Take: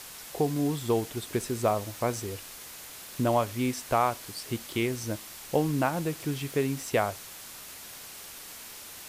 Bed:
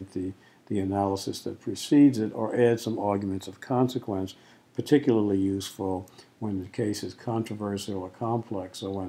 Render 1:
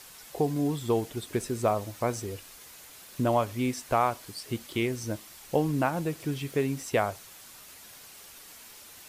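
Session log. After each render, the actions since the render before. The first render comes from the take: noise reduction 6 dB, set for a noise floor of -45 dBFS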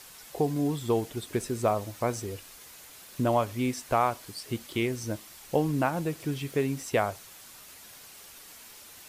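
no audible change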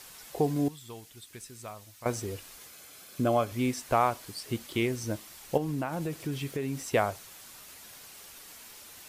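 0.68–2.06 s: amplifier tone stack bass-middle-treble 5-5-5; 2.67–3.52 s: comb of notches 940 Hz; 5.57–6.76 s: compression 5:1, threshold -28 dBFS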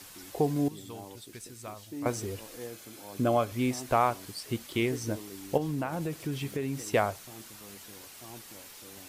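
add bed -20.5 dB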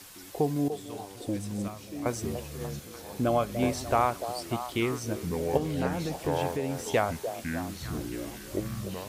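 ever faster or slower copies 715 ms, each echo -6 st, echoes 3, each echo -6 dB; repeats whose band climbs or falls 294 ms, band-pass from 540 Hz, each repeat 0.7 oct, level -7 dB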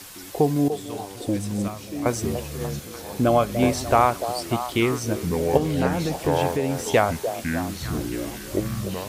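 trim +7 dB

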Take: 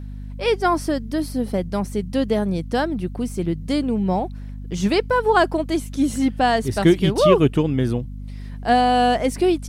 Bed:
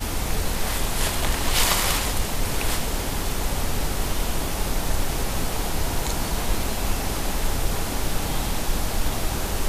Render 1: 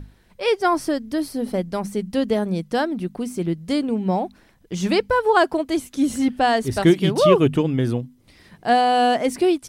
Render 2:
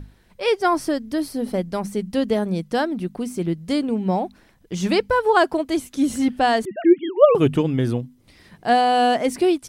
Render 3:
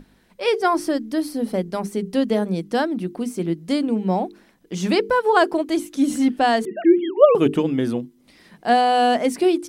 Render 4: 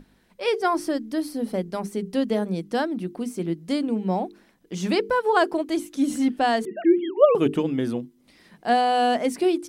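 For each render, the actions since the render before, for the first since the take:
hum notches 50/100/150/200/250 Hz
6.65–7.35 s: formants replaced by sine waves
resonant low shelf 150 Hz -9 dB, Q 1.5; hum notches 50/100/150/200/250/300/350/400/450 Hz
trim -3.5 dB

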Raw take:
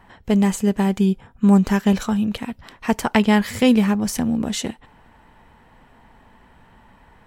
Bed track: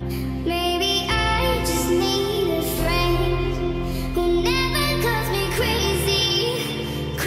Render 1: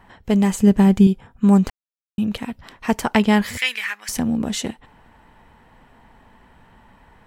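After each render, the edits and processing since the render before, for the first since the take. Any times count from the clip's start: 0.59–1.07 s: bass shelf 240 Hz +10.5 dB; 1.70–2.18 s: mute; 3.57–4.09 s: resonant high-pass 1.9 kHz, resonance Q 3.1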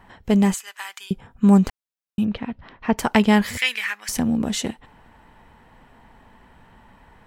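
0.54–1.11 s: high-pass 1.2 kHz 24 dB/octave; 2.25–2.98 s: distance through air 260 m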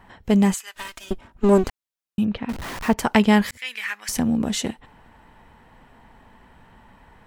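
0.74–1.64 s: comb filter that takes the minimum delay 3.2 ms; 2.49–2.94 s: jump at every zero crossing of -28 dBFS; 3.51–3.98 s: fade in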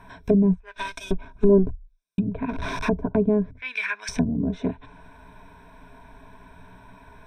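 low-pass that closes with the level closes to 350 Hz, closed at -18 dBFS; rippled EQ curve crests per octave 1.6, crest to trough 15 dB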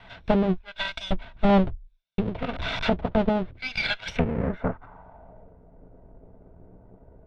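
comb filter that takes the minimum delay 1.4 ms; low-pass sweep 3.5 kHz -> 430 Hz, 4.01–5.59 s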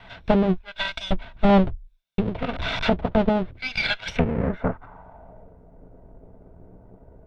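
trim +2.5 dB

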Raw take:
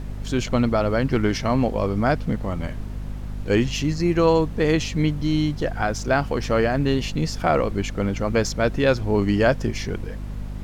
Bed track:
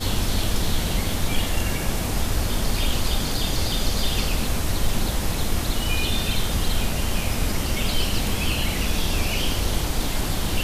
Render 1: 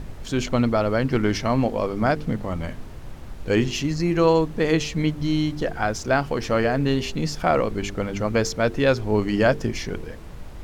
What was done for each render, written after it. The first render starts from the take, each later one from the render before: de-hum 50 Hz, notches 9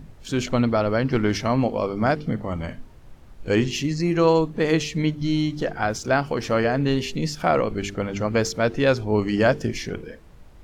noise print and reduce 10 dB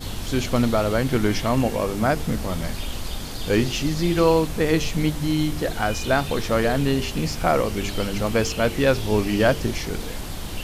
add bed track -7.5 dB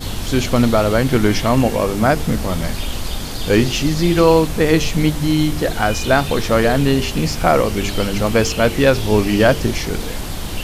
trim +6 dB; peak limiter -1 dBFS, peak gain reduction 2 dB

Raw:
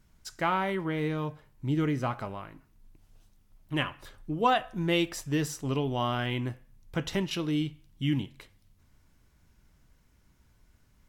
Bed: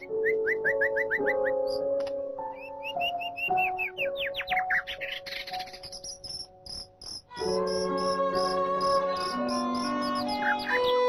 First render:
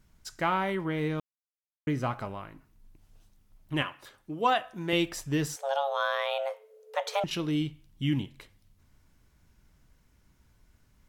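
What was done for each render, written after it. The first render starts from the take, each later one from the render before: 1.20–1.87 s: mute; 3.82–4.93 s: high-pass 340 Hz 6 dB/octave; 5.56–7.24 s: frequency shift +410 Hz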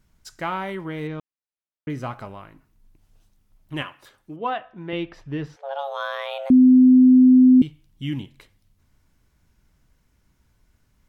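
1.07–1.90 s: distance through air 130 m; 4.36–5.79 s: distance through air 310 m; 6.50–7.62 s: bleep 255 Hz -8.5 dBFS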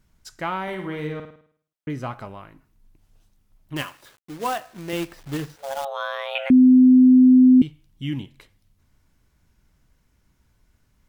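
0.62–1.90 s: flutter echo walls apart 9.1 m, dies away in 0.55 s; 3.76–5.85 s: companded quantiser 4-bit; 6.35–7.62 s: high-order bell 2.1 kHz +15.5 dB 1.3 oct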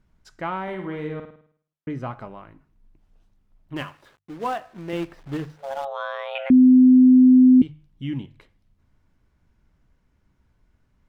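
low-pass 1.8 kHz 6 dB/octave; hum notches 50/100/150 Hz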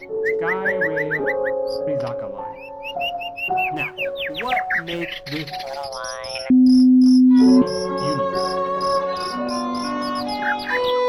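add bed +5 dB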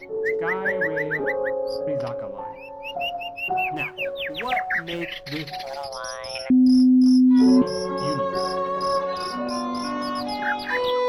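trim -3 dB

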